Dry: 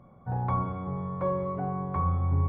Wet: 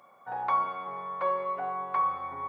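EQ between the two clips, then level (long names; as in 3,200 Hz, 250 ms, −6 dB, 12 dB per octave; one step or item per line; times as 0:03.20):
high-pass filter 710 Hz 12 dB per octave
high-shelf EQ 2,000 Hz +11.5 dB
+3.0 dB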